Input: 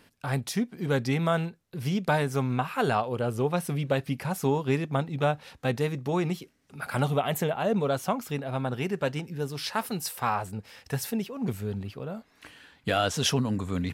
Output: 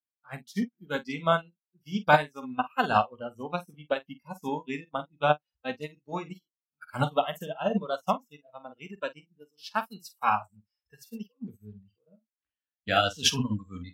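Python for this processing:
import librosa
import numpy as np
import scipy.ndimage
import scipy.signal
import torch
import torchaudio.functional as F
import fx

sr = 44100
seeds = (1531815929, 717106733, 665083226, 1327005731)

p1 = fx.cheby_harmonics(x, sr, harmonics=(7,), levels_db=(-39,), full_scale_db=-13.0)
p2 = fx.graphic_eq_15(p1, sr, hz=(160, 400, 10000), db=(-4, -10, -8))
p3 = fx.noise_reduce_blind(p2, sr, reduce_db=22)
p4 = p3 + fx.room_early_taps(p3, sr, ms=(20, 47), db=(-15.5, -7.0), dry=0)
p5 = fx.upward_expand(p4, sr, threshold_db=-45.0, expansion=2.5)
y = p5 * librosa.db_to_amplitude(8.5)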